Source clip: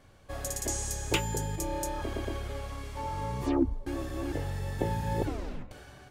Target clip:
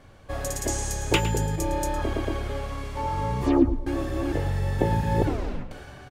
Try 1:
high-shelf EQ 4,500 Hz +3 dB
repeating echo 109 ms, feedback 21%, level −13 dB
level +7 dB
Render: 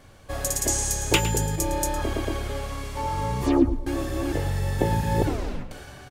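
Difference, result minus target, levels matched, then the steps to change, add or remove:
8,000 Hz band +6.0 dB
change: high-shelf EQ 4,500 Hz −6.5 dB

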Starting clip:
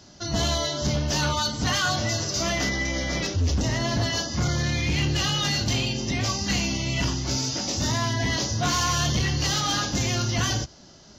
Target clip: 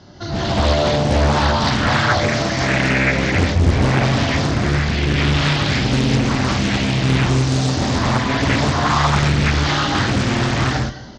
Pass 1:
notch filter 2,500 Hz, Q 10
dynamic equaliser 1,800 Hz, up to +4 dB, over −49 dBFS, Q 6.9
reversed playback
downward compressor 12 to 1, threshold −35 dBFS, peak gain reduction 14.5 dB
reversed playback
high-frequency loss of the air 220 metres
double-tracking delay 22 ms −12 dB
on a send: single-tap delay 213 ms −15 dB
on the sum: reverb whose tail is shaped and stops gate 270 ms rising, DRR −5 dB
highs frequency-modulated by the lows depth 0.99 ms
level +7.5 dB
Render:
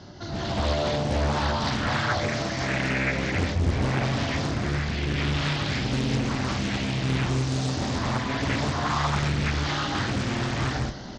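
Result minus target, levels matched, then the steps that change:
downward compressor: peak gain reduction +9 dB
change: downward compressor 12 to 1, threshold −25 dBFS, peak gain reduction 5.5 dB

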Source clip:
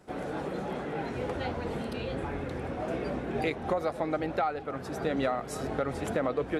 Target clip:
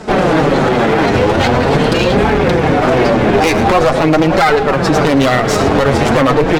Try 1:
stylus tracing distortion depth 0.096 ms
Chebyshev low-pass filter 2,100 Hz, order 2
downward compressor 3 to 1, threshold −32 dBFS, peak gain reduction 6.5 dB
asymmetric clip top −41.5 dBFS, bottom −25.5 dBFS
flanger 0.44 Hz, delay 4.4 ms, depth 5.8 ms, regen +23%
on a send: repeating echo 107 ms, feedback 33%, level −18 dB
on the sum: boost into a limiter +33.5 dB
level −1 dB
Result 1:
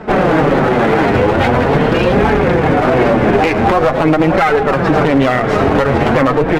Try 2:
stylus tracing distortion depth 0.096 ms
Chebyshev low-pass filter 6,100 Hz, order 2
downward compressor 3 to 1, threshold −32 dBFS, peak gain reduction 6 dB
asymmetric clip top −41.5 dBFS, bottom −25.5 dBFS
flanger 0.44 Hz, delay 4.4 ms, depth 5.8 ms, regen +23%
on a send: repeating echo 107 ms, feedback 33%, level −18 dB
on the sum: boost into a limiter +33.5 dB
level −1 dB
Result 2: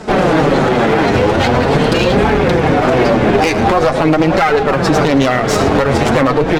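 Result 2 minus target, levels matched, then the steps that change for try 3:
downward compressor: peak gain reduction +6 dB
remove: downward compressor 3 to 1, threshold −32 dBFS, peak gain reduction 6 dB

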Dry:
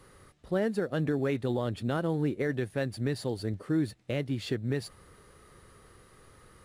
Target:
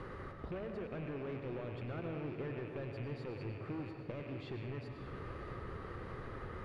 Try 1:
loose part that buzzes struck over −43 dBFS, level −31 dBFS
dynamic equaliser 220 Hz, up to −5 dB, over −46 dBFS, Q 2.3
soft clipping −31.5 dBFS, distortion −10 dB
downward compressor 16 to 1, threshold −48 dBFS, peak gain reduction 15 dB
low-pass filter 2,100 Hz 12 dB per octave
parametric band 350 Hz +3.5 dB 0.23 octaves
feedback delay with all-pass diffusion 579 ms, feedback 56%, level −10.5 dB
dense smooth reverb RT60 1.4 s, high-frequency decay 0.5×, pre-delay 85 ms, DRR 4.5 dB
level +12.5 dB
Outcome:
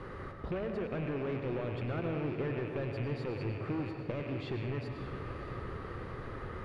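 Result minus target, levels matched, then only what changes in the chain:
downward compressor: peak gain reduction −6.5 dB
change: downward compressor 16 to 1, threshold −55 dBFS, peak gain reduction 21.5 dB

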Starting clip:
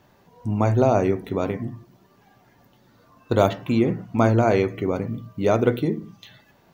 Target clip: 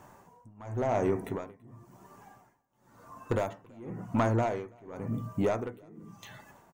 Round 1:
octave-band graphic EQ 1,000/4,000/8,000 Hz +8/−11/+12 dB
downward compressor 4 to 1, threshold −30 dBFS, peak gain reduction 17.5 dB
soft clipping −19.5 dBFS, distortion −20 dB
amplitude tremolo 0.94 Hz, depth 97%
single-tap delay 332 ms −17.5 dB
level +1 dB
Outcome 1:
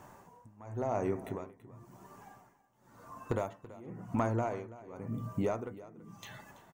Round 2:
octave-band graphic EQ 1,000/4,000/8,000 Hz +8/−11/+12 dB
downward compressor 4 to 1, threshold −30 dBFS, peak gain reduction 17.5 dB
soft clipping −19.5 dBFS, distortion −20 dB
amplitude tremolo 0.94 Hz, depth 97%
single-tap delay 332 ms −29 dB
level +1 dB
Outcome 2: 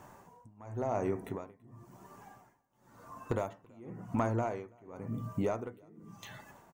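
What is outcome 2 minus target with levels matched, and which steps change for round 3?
downward compressor: peak gain reduction +6.5 dB
change: downward compressor 4 to 1, threshold −21.5 dBFS, peak gain reduction 11 dB

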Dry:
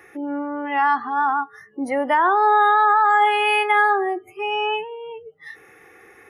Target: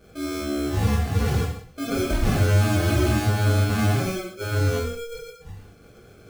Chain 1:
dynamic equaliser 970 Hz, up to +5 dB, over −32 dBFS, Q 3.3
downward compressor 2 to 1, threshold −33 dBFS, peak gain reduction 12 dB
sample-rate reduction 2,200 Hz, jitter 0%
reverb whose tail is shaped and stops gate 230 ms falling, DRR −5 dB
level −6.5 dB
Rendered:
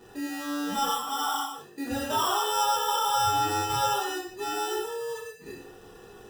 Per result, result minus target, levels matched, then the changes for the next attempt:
sample-rate reduction: distortion −19 dB; downward compressor: peak gain reduction +6 dB
change: sample-rate reduction 940 Hz, jitter 0%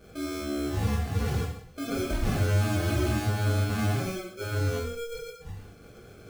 downward compressor: peak gain reduction +6 dB
change: downward compressor 2 to 1, threshold −21.5 dBFS, peak gain reduction 6.5 dB

